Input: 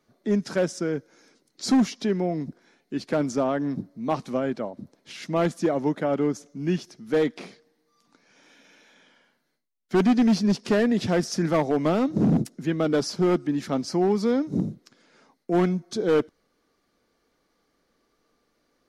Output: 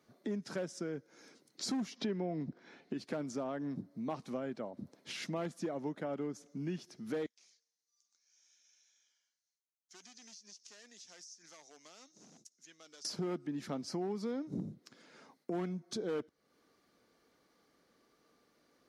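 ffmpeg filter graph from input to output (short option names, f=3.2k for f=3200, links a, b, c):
-filter_complex "[0:a]asettb=1/sr,asplit=3[a][b][c];[a]atrim=end=1.964[d];[b]atrim=start=1.96:end=2.94,asetpts=PTS-STARTPTS,afade=t=in:d=0.004:c=qsin,afade=t=out:st=0.976:d=0.004:c=qsin,lowpass=4.5k,acontrast=70[e];[c]atrim=start=2.936[f];[d][e]acrossfade=d=0.004:c1=hsin:c2=qsin[g];[g][f]acrossfade=d=0.004:c1=qsin:c2=hsin,asettb=1/sr,asplit=3[h][i][j];[h]atrim=end=7.264[k];[i]atrim=start=7.26:end=13.05,asetpts=PTS-STARTPTS,afade=t=in:d=0.004:c=qsin,afade=t=out:st=5.786:d=0.004:c=qsin,bandpass=f=6.3k:t=q:w=4.4,acompressor=threshold=-49dB:ratio=8:attack=3.2:release=140:knee=1:detection=peak[l];[j]atrim=start=13.046[m];[k][l]acrossfade=d=0.004:c1=hsin:c2=qsin[n];[n][m]acrossfade=d=0.004:c1=qsin:c2=hsin,acompressor=threshold=-39dB:ratio=3,highpass=74,volume=-1dB"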